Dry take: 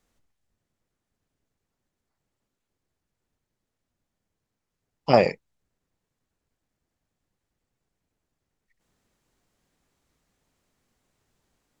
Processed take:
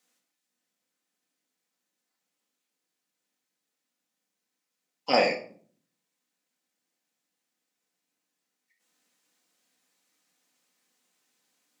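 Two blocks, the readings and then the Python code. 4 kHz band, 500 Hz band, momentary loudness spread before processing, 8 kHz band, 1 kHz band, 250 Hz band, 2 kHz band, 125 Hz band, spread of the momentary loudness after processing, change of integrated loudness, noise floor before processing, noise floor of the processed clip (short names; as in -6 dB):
+4.5 dB, -5.0 dB, 11 LU, n/a, -3.5 dB, -6.5 dB, +2.0 dB, -17.0 dB, 15 LU, -4.0 dB, -84 dBFS, -84 dBFS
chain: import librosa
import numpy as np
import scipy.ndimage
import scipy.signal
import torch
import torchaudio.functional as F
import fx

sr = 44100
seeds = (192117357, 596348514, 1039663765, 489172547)

y = scipy.signal.sosfilt(scipy.signal.butter(4, 210.0, 'highpass', fs=sr, output='sos'), x)
y = fx.tilt_shelf(y, sr, db=-6.5, hz=1500.0)
y = fx.room_shoebox(y, sr, seeds[0], volume_m3=490.0, walls='furnished', distance_m=2.0)
y = F.gain(torch.from_numpy(y), -3.0).numpy()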